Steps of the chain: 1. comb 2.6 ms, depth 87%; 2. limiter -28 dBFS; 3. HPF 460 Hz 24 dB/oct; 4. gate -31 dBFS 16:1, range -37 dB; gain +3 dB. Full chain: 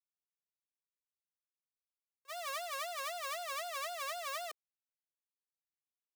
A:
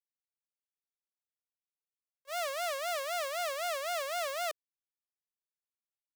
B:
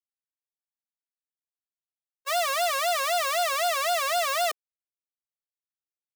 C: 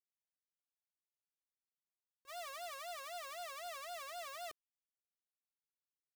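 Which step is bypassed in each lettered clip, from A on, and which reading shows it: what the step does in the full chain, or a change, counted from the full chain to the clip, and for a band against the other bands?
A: 1, 500 Hz band +4.5 dB; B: 2, mean gain reduction 5.0 dB; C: 3, 500 Hz band +2.0 dB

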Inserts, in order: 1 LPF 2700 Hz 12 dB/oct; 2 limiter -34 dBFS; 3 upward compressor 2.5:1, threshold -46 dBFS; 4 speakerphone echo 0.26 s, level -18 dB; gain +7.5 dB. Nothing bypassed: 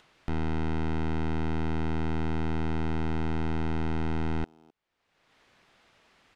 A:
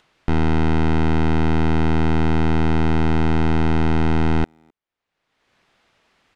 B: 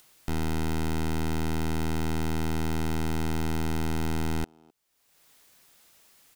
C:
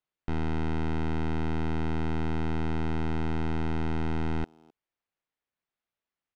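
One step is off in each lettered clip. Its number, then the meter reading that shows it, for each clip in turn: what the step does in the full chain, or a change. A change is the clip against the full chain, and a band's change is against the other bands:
2, mean gain reduction 11.5 dB; 1, 4 kHz band +6.5 dB; 3, crest factor change -4.0 dB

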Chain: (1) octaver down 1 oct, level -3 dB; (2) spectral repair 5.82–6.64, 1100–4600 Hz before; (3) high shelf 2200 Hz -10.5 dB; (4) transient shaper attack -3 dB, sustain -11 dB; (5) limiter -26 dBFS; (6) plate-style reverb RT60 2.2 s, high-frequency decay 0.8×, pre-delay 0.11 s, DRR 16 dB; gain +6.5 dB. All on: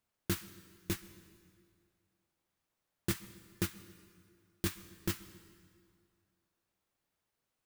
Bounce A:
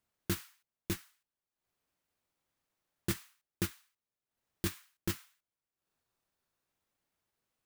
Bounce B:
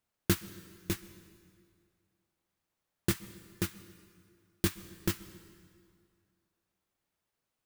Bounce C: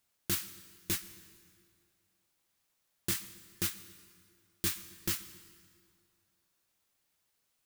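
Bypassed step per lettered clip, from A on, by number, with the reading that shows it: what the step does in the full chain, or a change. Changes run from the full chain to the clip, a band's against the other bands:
6, momentary loudness spread change -13 LU; 5, crest factor change +3.5 dB; 3, 8 kHz band +9.0 dB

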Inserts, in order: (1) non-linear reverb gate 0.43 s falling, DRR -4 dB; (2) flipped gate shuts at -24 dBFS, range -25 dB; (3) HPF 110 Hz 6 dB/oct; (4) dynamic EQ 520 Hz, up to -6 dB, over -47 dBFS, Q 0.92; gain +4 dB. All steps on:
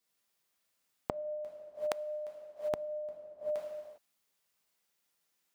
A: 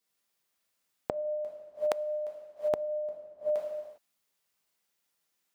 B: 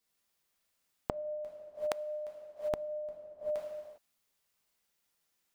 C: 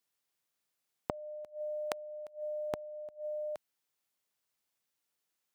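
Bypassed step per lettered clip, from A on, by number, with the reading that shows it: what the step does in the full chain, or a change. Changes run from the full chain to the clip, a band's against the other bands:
4, loudness change +5.0 LU; 3, 125 Hz band +3.0 dB; 1, momentary loudness spread change -2 LU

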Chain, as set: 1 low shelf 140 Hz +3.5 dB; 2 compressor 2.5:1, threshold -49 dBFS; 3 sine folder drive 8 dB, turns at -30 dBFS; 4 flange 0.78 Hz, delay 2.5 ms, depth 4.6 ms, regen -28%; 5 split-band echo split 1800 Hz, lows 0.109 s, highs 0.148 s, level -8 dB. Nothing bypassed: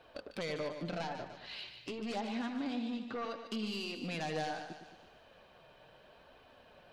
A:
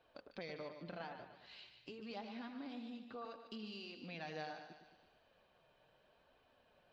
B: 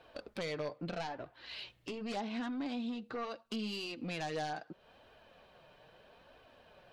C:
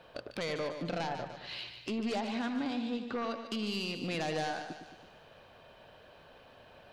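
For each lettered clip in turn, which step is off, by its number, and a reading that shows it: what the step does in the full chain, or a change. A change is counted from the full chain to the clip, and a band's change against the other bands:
3, distortion -11 dB; 5, echo-to-direct -6.5 dB to none; 4, momentary loudness spread change +8 LU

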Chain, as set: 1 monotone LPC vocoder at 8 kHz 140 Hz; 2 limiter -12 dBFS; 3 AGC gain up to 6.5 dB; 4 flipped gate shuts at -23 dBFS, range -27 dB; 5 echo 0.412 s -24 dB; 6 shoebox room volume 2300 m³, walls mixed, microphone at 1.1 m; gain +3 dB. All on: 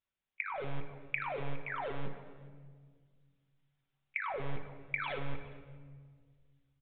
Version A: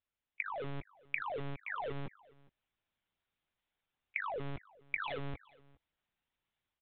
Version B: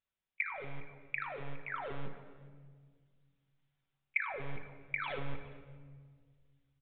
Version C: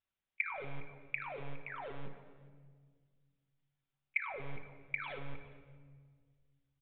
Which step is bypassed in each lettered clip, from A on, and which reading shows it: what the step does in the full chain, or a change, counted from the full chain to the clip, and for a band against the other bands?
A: 6, echo-to-direct -5.0 dB to -24.0 dB; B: 2, crest factor change +3.5 dB; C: 3, crest factor change +5.0 dB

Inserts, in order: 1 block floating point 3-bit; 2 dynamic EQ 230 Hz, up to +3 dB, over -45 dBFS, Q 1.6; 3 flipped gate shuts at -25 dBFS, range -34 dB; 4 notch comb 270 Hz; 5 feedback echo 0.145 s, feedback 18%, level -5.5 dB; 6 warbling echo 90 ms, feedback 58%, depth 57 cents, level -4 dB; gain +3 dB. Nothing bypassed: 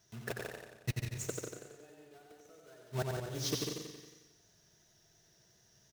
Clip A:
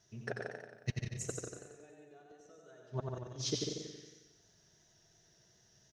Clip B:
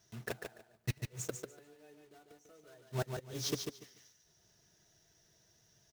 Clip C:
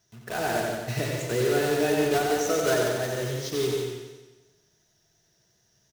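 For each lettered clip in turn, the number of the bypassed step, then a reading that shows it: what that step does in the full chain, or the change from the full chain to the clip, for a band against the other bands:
1, distortion -11 dB; 6, loudness change -1.5 LU; 3, momentary loudness spread change -14 LU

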